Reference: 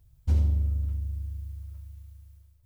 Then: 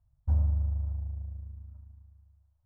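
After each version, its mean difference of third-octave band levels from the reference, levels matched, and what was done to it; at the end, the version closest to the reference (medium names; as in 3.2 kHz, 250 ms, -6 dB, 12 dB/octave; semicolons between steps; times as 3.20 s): 5.5 dB: companding laws mixed up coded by A; FFT filter 130 Hz 0 dB, 430 Hz -12 dB, 620 Hz +3 dB, 970 Hz +2 dB, 1.6 kHz -8 dB, 2.4 kHz -23 dB; trim -2 dB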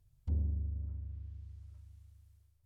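3.5 dB: peaking EQ 63 Hz -11 dB 0.26 oct; low-pass that closes with the level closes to 450 Hz, closed at -26 dBFS; trim -7.5 dB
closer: second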